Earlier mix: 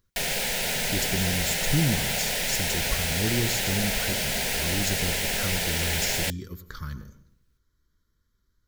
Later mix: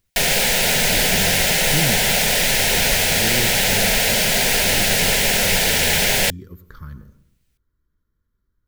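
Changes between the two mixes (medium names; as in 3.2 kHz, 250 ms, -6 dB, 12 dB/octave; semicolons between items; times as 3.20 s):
speech: add peaking EQ 5.5 kHz -13.5 dB 2.3 oct; background +10.0 dB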